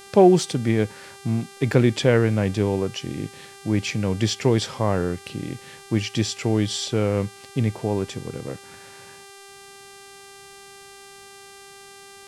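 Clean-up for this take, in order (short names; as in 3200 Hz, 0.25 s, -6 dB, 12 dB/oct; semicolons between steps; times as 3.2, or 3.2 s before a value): de-hum 395.4 Hz, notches 29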